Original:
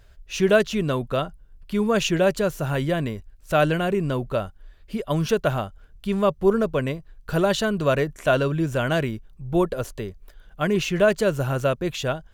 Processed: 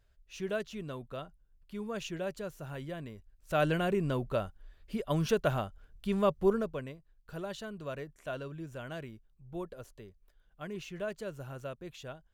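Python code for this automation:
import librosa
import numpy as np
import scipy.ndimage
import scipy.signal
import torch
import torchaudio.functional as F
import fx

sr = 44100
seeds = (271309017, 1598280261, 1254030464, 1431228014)

y = fx.gain(x, sr, db=fx.line((3.09, -17.0), (3.74, -7.0), (6.44, -7.0), (6.96, -19.0)))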